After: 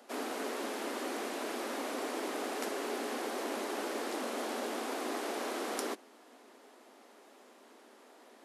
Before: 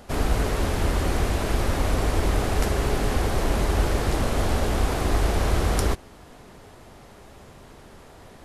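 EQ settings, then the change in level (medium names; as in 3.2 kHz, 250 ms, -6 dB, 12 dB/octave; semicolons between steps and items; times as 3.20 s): steep high-pass 230 Hz 72 dB/octave; -9.0 dB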